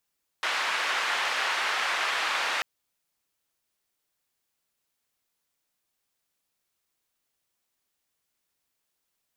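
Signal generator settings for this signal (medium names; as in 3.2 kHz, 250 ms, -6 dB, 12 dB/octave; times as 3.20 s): noise band 900–2200 Hz, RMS -28 dBFS 2.19 s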